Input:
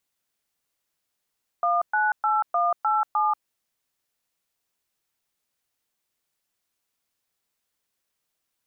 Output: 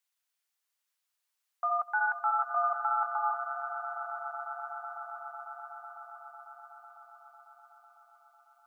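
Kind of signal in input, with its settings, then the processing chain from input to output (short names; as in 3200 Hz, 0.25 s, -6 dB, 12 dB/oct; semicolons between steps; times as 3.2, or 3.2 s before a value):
DTMF "198187", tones 0.186 s, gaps 0.118 s, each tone -22 dBFS
on a send: swelling echo 0.125 s, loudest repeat 8, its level -14 dB; on the sum: flange 1 Hz, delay 3 ms, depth 5.4 ms, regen -48%; HPF 920 Hz 12 dB/oct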